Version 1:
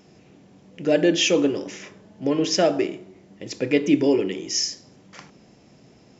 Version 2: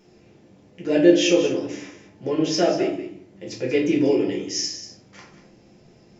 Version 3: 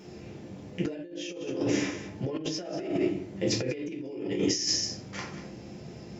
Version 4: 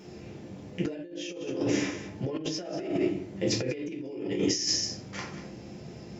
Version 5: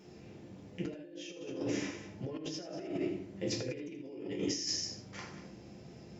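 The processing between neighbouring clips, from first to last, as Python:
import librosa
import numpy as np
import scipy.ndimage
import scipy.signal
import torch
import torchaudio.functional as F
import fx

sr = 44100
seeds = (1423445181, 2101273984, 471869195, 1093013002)

y1 = x + 10.0 ** (-12.0 / 20.0) * np.pad(x, (int(190 * sr / 1000.0), 0))[:len(x)]
y1 = fx.room_shoebox(y1, sr, seeds[0], volume_m3=40.0, walls='mixed', distance_m=0.86)
y1 = y1 * librosa.db_to_amplitude(-6.5)
y2 = scipy.signal.sosfilt(scipy.signal.butter(2, 52.0, 'highpass', fs=sr, output='sos'), y1)
y2 = fx.over_compress(y2, sr, threshold_db=-32.0, ratio=-1.0)
y2 = fx.low_shelf(y2, sr, hz=140.0, db=6.0)
y2 = y2 * librosa.db_to_amplitude(-1.5)
y3 = y2
y4 = y3 + 10.0 ** (-10.5 / 20.0) * np.pad(y3, (int(79 * sr / 1000.0), 0))[:len(y3)]
y4 = y4 * librosa.db_to_amplitude(-8.0)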